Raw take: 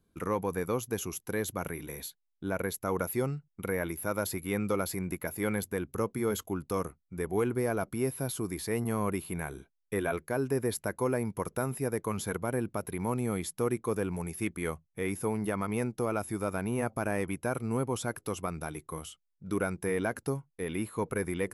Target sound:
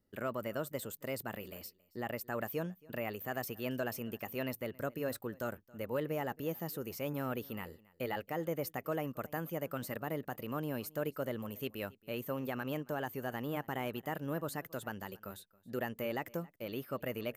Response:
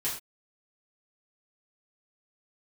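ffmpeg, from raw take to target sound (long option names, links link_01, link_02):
-af "aecho=1:1:340:0.0668,asetrate=54684,aresample=44100,volume=-6.5dB"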